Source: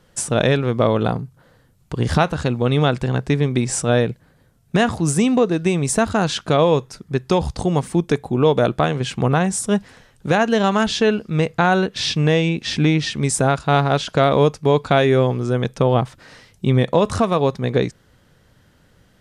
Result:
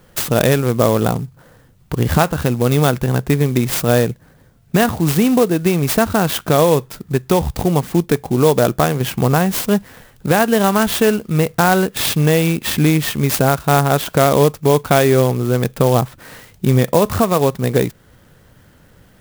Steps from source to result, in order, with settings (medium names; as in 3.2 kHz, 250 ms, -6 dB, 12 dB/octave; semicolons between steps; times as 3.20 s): in parallel at -1 dB: compression, threshold -26 dBFS, peak gain reduction 15 dB; on the sum: sampling jitter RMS 0.046 ms; trim +1 dB